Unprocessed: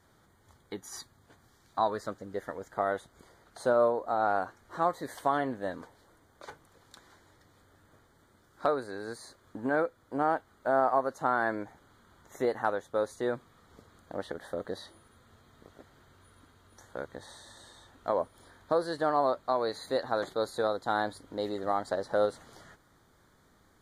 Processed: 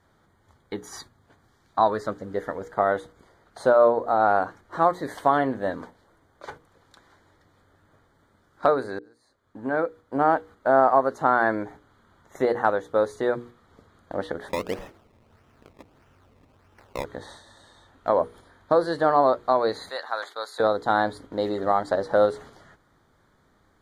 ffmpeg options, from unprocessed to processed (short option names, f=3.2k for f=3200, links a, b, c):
-filter_complex "[0:a]asplit=3[a][b][c];[a]afade=t=out:st=14.48:d=0.02[d];[b]acrusher=samples=20:mix=1:aa=0.000001:lfo=1:lforange=20:lforate=1.6,afade=t=in:st=14.48:d=0.02,afade=t=out:st=17.03:d=0.02[e];[c]afade=t=in:st=17.03:d=0.02[f];[d][e][f]amix=inputs=3:normalize=0,asettb=1/sr,asplit=3[g][h][i];[g]atrim=end=19.894[j];[h]atrim=start=19.89:end=20.6,asetpts=PTS-STARTPTS,afade=t=in:d=0.004:c=qsin,afade=t=out:st=0.706:d=0.004:c=qsin,highpass=1.1k[k];[i]atrim=start=20.596[l];[j][k]acrossfade=d=0.004:c1=hsin:c2=qsin[m];[m][l]acrossfade=d=0.004:c1=qsin:c2=hsin,asplit=2[n][o];[n]atrim=end=8.99,asetpts=PTS-STARTPTS,afade=t=out:st=8.986:d=0.004:c=hsin[p];[o]atrim=start=8.99,asetpts=PTS-STARTPTS,afade=t=in:d=1.3[q];[p][q]concat=n=2:v=0:a=1,agate=range=-6dB:threshold=-50dB:ratio=16:detection=peak,highshelf=f=4.9k:g=-10,bandreject=f=60:t=h:w=6,bandreject=f=120:t=h:w=6,bandreject=f=180:t=h:w=6,bandreject=f=240:t=h:w=6,bandreject=f=300:t=h:w=6,bandreject=f=360:t=h:w=6,bandreject=f=420:t=h:w=6,bandreject=f=480:t=h:w=6,volume=8dB"